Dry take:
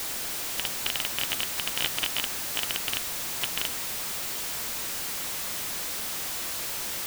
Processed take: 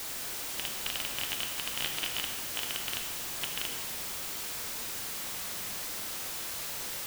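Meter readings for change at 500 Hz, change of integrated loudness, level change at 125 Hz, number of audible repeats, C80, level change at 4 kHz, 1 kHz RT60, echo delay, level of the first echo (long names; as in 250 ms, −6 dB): −4.5 dB, −5.0 dB, −4.0 dB, no echo audible, 7.0 dB, −4.5 dB, 1.5 s, no echo audible, no echo audible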